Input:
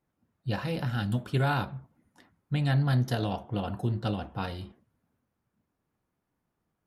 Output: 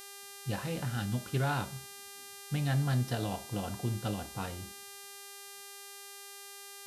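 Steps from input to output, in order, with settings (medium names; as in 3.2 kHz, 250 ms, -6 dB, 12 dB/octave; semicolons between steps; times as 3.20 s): level-controlled noise filter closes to 310 Hz, open at -25 dBFS; mains buzz 400 Hz, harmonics 33, -44 dBFS -1 dB/octave; trim -4.5 dB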